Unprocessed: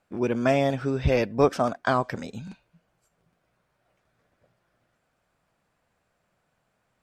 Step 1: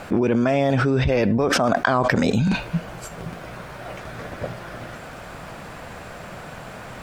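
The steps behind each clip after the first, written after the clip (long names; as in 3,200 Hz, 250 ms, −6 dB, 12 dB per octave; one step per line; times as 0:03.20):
high-shelf EQ 4,900 Hz −6 dB
envelope flattener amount 100%
level −3.5 dB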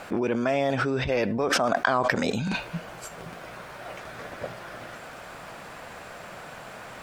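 low-shelf EQ 250 Hz −10.5 dB
level −2.5 dB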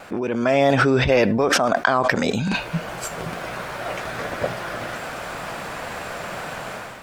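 automatic gain control gain up to 10.5 dB
tape wow and flutter 29 cents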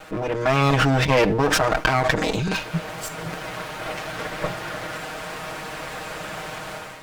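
lower of the sound and its delayed copy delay 6.4 ms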